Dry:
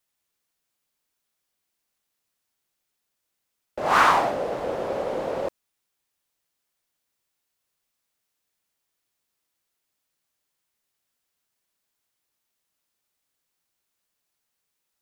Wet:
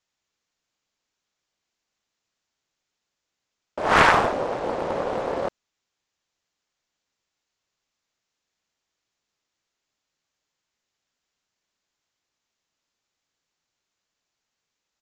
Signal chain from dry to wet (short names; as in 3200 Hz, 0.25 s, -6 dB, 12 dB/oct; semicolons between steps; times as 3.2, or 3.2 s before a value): downsampling 16000 Hz; Doppler distortion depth 0.9 ms; gain +1.5 dB